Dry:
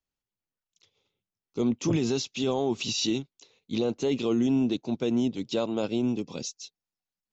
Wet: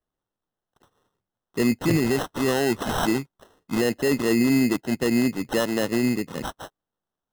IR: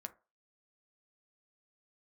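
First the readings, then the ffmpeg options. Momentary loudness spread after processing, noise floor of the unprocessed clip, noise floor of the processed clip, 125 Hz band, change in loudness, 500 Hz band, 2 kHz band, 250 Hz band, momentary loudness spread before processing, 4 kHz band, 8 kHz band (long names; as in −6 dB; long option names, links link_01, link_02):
11 LU, below −85 dBFS, below −85 dBFS, +4.5 dB, +4.5 dB, +4.0 dB, +12.5 dB, +4.5 dB, 11 LU, +0.5 dB, can't be measured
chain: -af "acrusher=samples=19:mix=1:aa=0.000001,volume=4.5dB"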